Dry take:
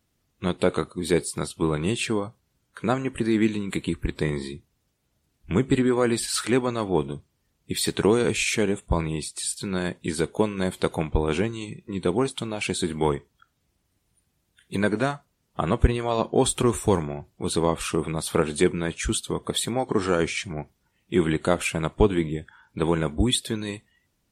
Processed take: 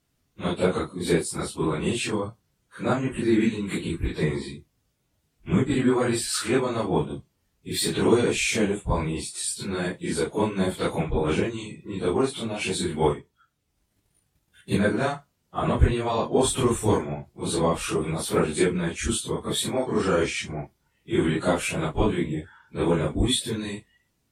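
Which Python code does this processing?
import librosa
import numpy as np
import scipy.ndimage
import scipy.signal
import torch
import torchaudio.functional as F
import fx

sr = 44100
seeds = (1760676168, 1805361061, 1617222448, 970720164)

y = fx.phase_scramble(x, sr, seeds[0], window_ms=100)
y = fx.transient(y, sr, attack_db=8, sustain_db=-4, at=(13.12, 14.77), fade=0.02)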